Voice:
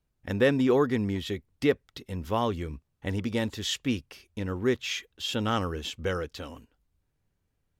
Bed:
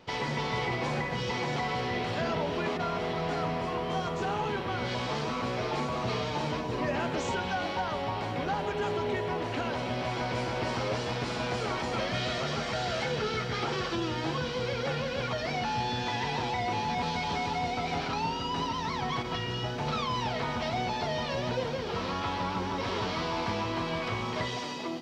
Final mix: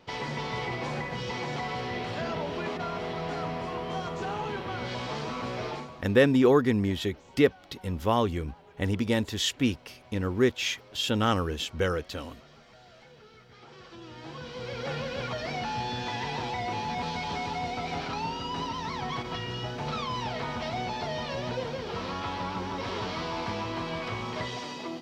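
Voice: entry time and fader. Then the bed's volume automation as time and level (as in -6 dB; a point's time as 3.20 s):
5.75 s, +2.5 dB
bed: 5.69 s -2 dB
6.13 s -22.5 dB
13.46 s -22.5 dB
14.93 s -1.5 dB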